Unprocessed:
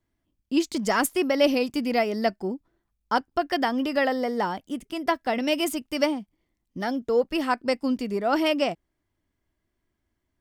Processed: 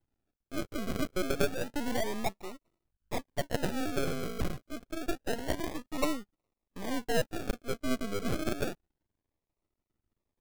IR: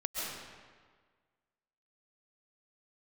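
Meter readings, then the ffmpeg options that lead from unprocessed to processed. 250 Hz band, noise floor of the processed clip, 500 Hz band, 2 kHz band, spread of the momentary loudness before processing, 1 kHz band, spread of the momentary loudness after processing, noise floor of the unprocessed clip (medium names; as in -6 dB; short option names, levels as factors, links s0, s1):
-9.5 dB, under -85 dBFS, -10.0 dB, -9.5 dB, 10 LU, -12.5 dB, 9 LU, -79 dBFS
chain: -filter_complex "[0:a]acrossover=split=620[s0][s1];[s0]aeval=exprs='val(0)*(1-0.7/2+0.7/2*cos(2*PI*1*n/s))':c=same[s2];[s1]aeval=exprs='val(0)*(1-0.7/2-0.7/2*cos(2*PI*1*n/s))':c=same[s3];[s2][s3]amix=inputs=2:normalize=0,acrusher=samples=38:mix=1:aa=0.000001:lfo=1:lforange=22.8:lforate=0.28,aeval=exprs='max(val(0),0)':c=same"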